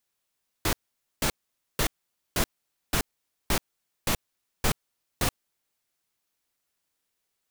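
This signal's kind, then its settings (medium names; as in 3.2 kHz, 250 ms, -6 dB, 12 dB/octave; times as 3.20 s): noise bursts pink, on 0.08 s, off 0.49 s, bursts 9, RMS -24 dBFS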